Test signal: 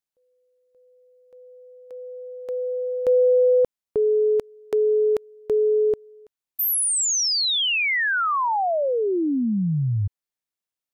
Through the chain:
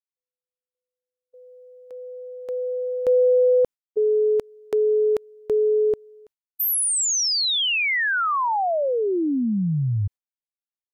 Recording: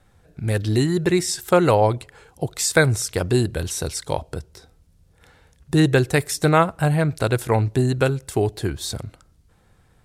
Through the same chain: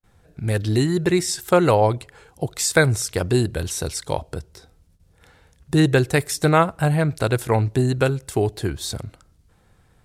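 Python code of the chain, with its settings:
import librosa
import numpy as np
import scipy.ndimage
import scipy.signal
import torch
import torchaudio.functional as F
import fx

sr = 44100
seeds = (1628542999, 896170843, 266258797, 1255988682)

y = fx.gate_hold(x, sr, open_db=-50.0, close_db=-52.0, hold_ms=43.0, range_db=-35, attack_ms=14.0, release_ms=113.0)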